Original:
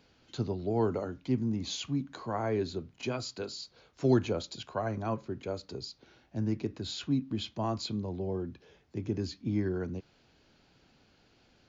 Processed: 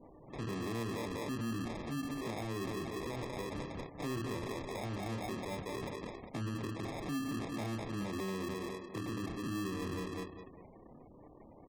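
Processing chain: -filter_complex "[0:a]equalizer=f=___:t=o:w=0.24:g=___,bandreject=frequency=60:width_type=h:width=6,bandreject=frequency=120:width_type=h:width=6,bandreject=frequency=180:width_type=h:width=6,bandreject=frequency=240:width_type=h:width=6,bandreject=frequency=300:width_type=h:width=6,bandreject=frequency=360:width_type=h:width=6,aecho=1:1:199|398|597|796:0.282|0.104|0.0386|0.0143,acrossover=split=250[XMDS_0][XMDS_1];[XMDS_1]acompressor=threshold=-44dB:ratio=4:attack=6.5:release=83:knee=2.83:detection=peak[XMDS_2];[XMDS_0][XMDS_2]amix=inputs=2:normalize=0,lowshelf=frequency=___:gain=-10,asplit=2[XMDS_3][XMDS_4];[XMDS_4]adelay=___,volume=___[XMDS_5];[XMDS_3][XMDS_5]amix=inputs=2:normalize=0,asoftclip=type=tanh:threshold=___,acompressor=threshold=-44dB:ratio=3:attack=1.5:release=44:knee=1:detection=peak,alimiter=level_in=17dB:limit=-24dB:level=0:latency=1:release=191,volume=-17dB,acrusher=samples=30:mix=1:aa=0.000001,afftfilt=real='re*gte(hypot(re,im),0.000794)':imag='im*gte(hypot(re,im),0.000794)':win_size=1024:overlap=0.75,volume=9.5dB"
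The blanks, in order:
300, 5, 180, 26, -4.5dB, -27dB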